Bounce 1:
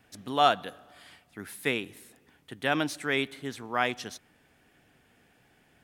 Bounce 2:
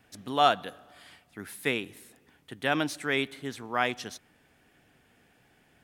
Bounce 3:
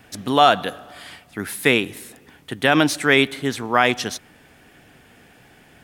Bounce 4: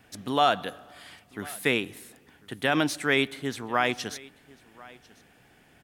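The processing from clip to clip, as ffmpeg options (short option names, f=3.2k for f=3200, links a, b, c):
-af anull
-af "alimiter=level_in=14dB:limit=-1dB:release=50:level=0:latency=1,volume=-1dB"
-af "aecho=1:1:1045:0.0708,volume=-8dB"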